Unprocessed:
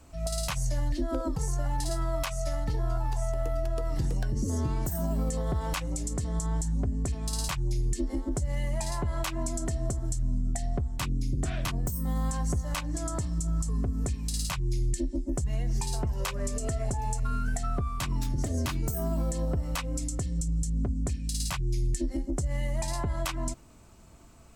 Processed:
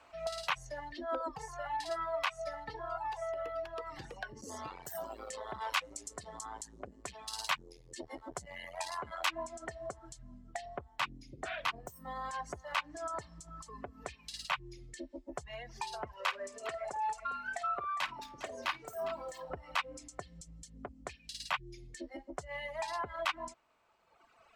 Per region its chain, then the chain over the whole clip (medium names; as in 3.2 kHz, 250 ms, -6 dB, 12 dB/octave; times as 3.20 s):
4.41–9.31 s: treble shelf 4.9 kHz +12 dB + transformer saturation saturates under 350 Hz
16.15–19.50 s: bass shelf 200 Hz -10.5 dB + multi-tap echo 53/406 ms -9.5/-11 dB
whole clip: three-band isolator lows -20 dB, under 570 Hz, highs -22 dB, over 3.8 kHz; reverb removal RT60 1.7 s; bass shelf 130 Hz -8.5 dB; trim +4 dB